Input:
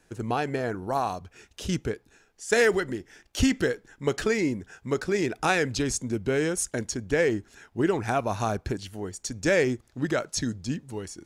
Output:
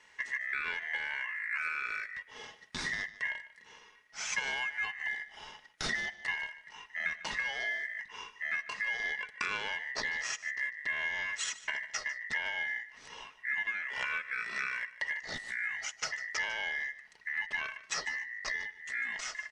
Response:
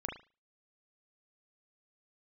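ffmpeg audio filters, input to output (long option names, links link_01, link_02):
-af "asetrate=25442,aresample=44100,bandreject=frequency=5600:width=19,aeval=exprs='val(0)*sin(2*PI*1900*n/s)':channel_layout=same,acompressor=threshold=-37dB:ratio=12,aecho=1:1:4.7:0.31,aecho=1:1:149:0.15,volume=5dB"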